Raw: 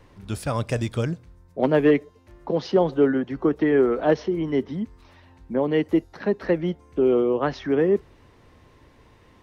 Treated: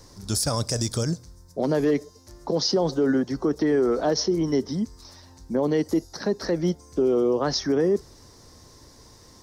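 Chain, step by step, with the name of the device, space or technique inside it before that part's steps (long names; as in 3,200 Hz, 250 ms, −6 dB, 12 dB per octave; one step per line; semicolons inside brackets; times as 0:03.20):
over-bright horn tweeter (high shelf with overshoot 3,800 Hz +12 dB, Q 3; brickwall limiter −16 dBFS, peak gain reduction 7.5 dB)
level +2 dB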